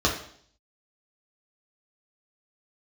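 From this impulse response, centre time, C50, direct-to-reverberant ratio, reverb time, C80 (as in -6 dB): 25 ms, 7.0 dB, -3.0 dB, 0.60 s, 10.5 dB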